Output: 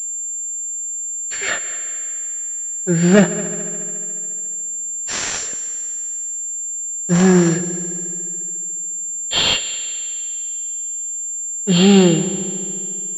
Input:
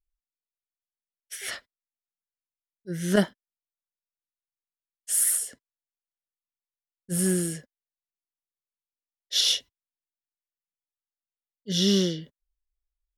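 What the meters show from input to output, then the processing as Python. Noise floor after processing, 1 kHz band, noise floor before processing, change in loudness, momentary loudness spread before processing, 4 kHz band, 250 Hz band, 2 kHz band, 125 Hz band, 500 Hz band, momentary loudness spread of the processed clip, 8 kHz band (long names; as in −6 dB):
−26 dBFS, +17.0 dB, below −85 dBFS, +6.5 dB, 16 LU, +6.5 dB, +13.0 dB, +14.0 dB, +14.0 dB, +12.0 dB, 10 LU, +14.0 dB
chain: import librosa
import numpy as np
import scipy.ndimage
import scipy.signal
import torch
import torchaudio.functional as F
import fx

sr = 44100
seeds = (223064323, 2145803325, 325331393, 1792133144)

p1 = fx.freq_compress(x, sr, knee_hz=2600.0, ratio=1.5)
p2 = fx.leveller(p1, sr, passes=3)
p3 = fx.notch_comb(p2, sr, f0_hz=1000.0)
p4 = p3 + fx.echo_heads(p3, sr, ms=71, heads='all three', feedback_pct=67, wet_db=-19.5, dry=0)
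p5 = fx.pwm(p4, sr, carrier_hz=7300.0)
y = p5 * 10.0 ** (5.5 / 20.0)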